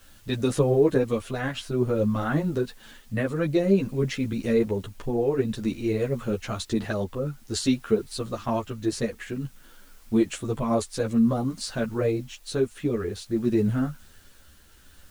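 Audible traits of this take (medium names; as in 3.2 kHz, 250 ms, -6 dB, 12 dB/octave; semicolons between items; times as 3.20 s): a quantiser's noise floor 10-bit, dither triangular; tremolo triangle 0.53 Hz, depth 35%; a shimmering, thickened sound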